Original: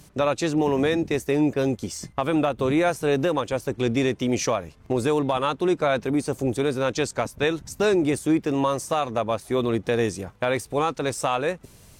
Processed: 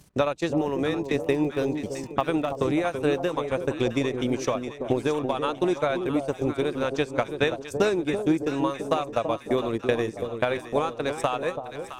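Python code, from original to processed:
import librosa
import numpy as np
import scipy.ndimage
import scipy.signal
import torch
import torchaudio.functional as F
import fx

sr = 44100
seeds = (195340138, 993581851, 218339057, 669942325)

y = fx.transient(x, sr, attack_db=8, sustain_db=-12)
y = fx.dmg_crackle(y, sr, seeds[0], per_s=22.0, level_db=-30.0, at=(0.88, 2.55), fade=0.02)
y = fx.echo_alternate(y, sr, ms=332, hz=860.0, feedback_pct=68, wet_db=-7)
y = y * 10.0 ** (-5.5 / 20.0)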